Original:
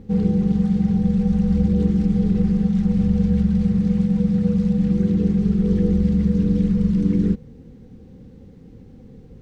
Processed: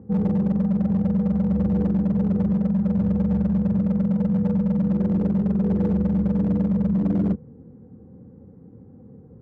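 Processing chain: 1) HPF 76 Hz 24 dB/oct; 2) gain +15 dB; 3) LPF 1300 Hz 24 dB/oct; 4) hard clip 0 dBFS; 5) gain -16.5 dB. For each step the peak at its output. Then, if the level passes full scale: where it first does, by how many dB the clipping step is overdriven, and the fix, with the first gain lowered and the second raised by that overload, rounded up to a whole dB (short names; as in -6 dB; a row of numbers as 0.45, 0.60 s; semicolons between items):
-6.5, +8.5, +8.5, 0.0, -16.5 dBFS; step 2, 8.5 dB; step 2 +6 dB, step 5 -7.5 dB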